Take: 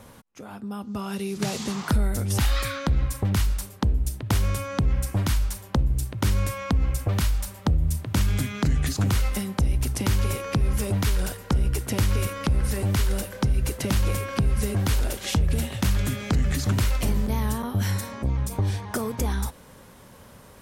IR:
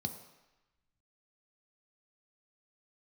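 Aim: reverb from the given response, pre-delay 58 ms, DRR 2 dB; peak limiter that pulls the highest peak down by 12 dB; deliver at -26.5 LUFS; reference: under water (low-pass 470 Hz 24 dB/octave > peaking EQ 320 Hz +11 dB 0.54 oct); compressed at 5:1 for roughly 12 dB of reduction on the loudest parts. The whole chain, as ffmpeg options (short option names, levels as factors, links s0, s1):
-filter_complex "[0:a]acompressor=threshold=0.0251:ratio=5,alimiter=level_in=1.58:limit=0.0631:level=0:latency=1,volume=0.631,asplit=2[s0][s1];[1:a]atrim=start_sample=2205,adelay=58[s2];[s1][s2]afir=irnorm=-1:irlink=0,volume=0.794[s3];[s0][s3]amix=inputs=2:normalize=0,lowpass=f=470:w=0.5412,lowpass=f=470:w=1.3066,equalizer=f=320:t=o:w=0.54:g=11,volume=1.68"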